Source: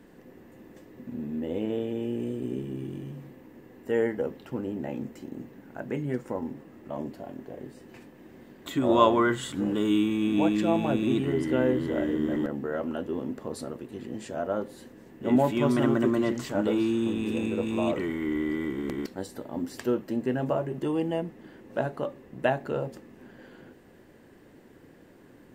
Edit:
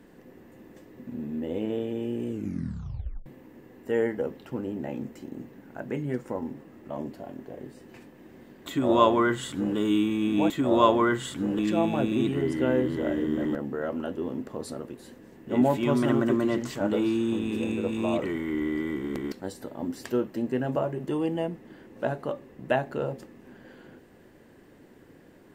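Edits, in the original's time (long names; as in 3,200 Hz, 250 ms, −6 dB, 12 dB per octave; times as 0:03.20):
0:02.27: tape stop 0.99 s
0:08.68–0:09.77: duplicate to 0:10.50
0:13.90–0:14.73: remove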